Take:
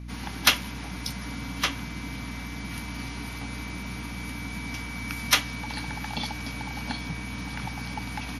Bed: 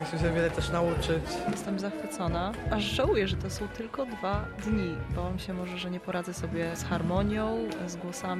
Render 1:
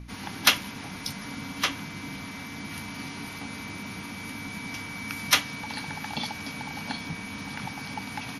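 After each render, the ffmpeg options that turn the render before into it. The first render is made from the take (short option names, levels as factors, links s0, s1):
-af "bandreject=f=60:t=h:w=4,bandreject=f=120:t=h:w=4,bandreject=f=180:t=h:w=4,bandreject=f=240:t=h:w=4,bandreject=f=300:t=h:w=4"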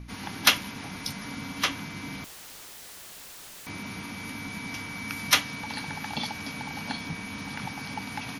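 -filter_complex "[0:a]asettb=1/sr,asplit=3[s0][s1][s2];[s0]atrim=end=2.244[s3];[s1]atrim=start=2.24:end=3.67,asetpts=PTS-STARTPTS,afade=t=in:d=0.004:c=qsin,afade=t=out:st=1.426:d=0.004:c=qsin,aeval=exprs='(mod(106*val(0)+1,2)-1)/106':c=same[s4];[s2]atrim=start=3.666[s5];[s3][s4]acrossfade=d=0.004:c1=hsin:c2=qsin[s6];[s6][s5]acrossfade=d=0.004:c1=qsin:c2=hsin"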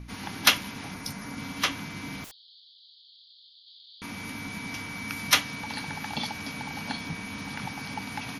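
-filter_complex "[0:a]asettb=1/sr,asplit=3[s0][s1][s2];[s0]atrim=end=0.944[s3];[s1]atrim=start=0.94:end=1.38,asetpts=PTS-STARTPTS,afade=t=in:d=0.004:c=qsin,afade=t=out:st=0.436:d=0.004:c=qsin,equalizer=f=3400:w=1.4:g=-6.5[s4];[s2]atrim=start=1.376[s5];[s3][s4]acrossfade=d=0.004:c1=hsin:c2=qsin[s6];[s6][s5]acrossfade=d=0.004:c1=qsin:c2=hsin,asettb=1/sr,asplit=3[s7][s8][s9];[s7]atrim=end=2.314[s10];[s8]atrim=start=2.31:end=4.02,asetpts=PTS-STARTPTS,afade=t=in:d=0.004:c=qsin,afade=t=out:st=1.706:d=0.004:c=qsin,asuperpass=centerf=3900:order=12:qfactor=2.5[s11];[s9]atrim=start=4.016[s12];[s10][s11]acrossfade=d=0.004:c1=hsin:c2=qsin[s13];[s13][s12]acrossfade=d=0.004:c1=qsin:c2=hsin"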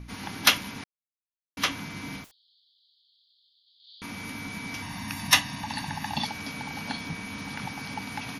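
-filter_complex "[0:a]asettb=1/sr,asplit=3[s0][s1][s2];[s0]atrim=end=4.824[s3];[s1]atrim=start=4.82:end=6.25,asetpts=PTS-STARTPTS,afade=t=in:d=0.004:c=qsin,afade=t=out:st=1.426:d=0.004:c=qsin,aecho=1:1:1.1:0.71,atrim=end_sample=63063[s4];[s2]atrim=start=6.246[s5];[s3][s4]acrossfade=d=0.004:c1=hsin:c2=qsin[s6];[s6][s5]acrossfade=d=0.004:c1=qsin:c2=hsin,asplit=5[s7][s8][s9][s10][s11];[s7]atrim=end=0.84,asetpts=PTS-STARTPTS,afade=t=out:st=0.836:d=0.004:c=hsin[s12];[s8]atrim=start=0.84:end=1.57,asetpts=PTS-STARTPTS,volume=0[s13];[s9]atrim=start=1.57:end=2.28,asetpts=PTS-STARTPTS,afade=t=in:d=0.004:c=hsin,afade=t=out:st=0.59:d=0.12:silence=0.266073[s14];[s10]atrim=start=2.28:end=3.78,asetpts=PTS-STARTPTS,volume=0.266[s15];[s11]atrim=start=3.78,asetpts=PTS-STARTPTS,afade=t=in:d=0.12:silence=0.266073[s16];[s12][s13][s14][s15][s16]concat=n=5:v=0:a=1"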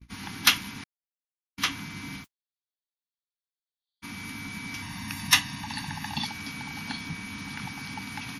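-af "agate=range=0.0112:threshold=0.00891:ratio=16:detection=peak,equalizer=f=560:w=1.9:g=-14"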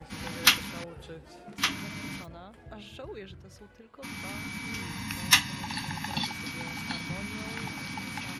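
-filter_complex "[1:a]volume=0.158[s0];[0:a][s0]amix=inputs=2:normalize=0"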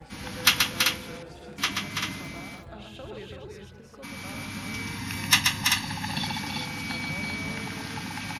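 -af "aecho=1:1:131|332|389:0.596|0.531|0.531"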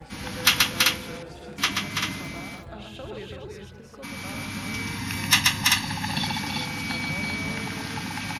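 -af "volume=1.41,alimiter=limit=0.794:level=0:latency=1"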